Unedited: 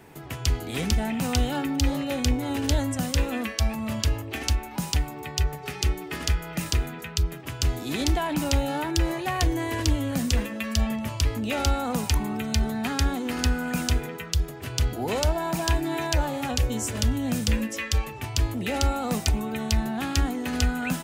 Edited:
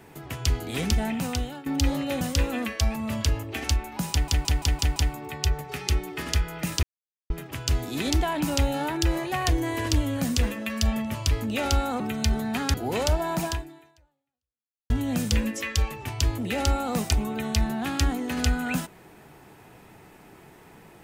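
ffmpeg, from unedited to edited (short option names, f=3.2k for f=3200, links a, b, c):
-filter_complex "[0:a]asplit=13[a][b][c][d][e][f][g][h][i][j][k][l][m];[a]atrim=end=1.66,asetpts=PTS-STARTPTS,afade=t=out:st=1.1:d=0.56:silence=0.125893[n];[b]atrim=start=1.66:end=2.212,asetpts=PTS-STARTPTS,afade=t=in:d=0.004:c=hsin:silence=0.125893[o];[c]atrim=start=2.998:end=5.072[p];[d]atrim=start=4.898:end=5.072[q];[e]atrim=start=4.898:end=5.072[r];[f]atrim=start=4.898:end=5.072[s];[g]atrim=start=4.898:end=5.072[t];[h]atrim=start=4.898:end=6.77,asetpts=PTS-STARTPTS,afade=t=out:st=1.868:d=0.004:c=hsin[u];[i]atrim=start=6.77:end=7.24,asetpts=PTS-STARTPTS,volume=0[v];[j]atrim=start=7.24:end=11.942,asetpts=PTS-STARTPTS,afade=t=in:d=0.004:c=hsin[w];[k]atrim=start=12.298:end=13.042[x];[l]atrim=start=14.898:end=17.06,asetpts=PTS-STARTPTS,afade=t=out:st=0.712:d=1.45:c=exp[y];[m]atrim=start=17.06,asetpts=PTS-STARTPTS,afade=t=in:d=0.004:c=hsin[z];[n][o]concat=n=2:v=0:a=1[aa];[aa][p]acrossfade=d=0.004:c1=hsin:c2=hsin[ab];[ab][q]acrossfade=d=0.004:c1=hsin:c2=hsin[ac];[ac][r]acrossfade=d=0.004:c1=hsin:c2=hsin[ad];[ad][s]acrossfade=d=0.004:c1=hsin:c2=hsin[ae];[ae][t]acrossfade=d=0.004:c1=hsin:c2=hsin[af];[u][v][w]concat=n=3:v=0:a=1[ag];[af][ag]acrossfade=d=0.004:c1=hsin:c2=hsin[ah];[ah][x]acrossfade=d=0.004:c1=hsin:c2=hsin[ai];[y][z]concat=n=2:v=0:a=1[aj];[ai][aj]acrossfade=d=0.004:c1=hsin:c2=hsin"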